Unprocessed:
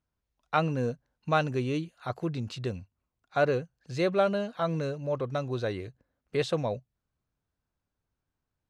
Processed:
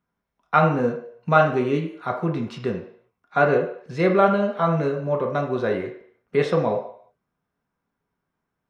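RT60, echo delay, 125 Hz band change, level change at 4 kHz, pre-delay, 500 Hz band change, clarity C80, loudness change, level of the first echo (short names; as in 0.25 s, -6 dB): 0.60 s, none, +6.0 dB, +0.5 dB, 3 ms, +8.0 dB, 10.0 dB, +8.0 dB, none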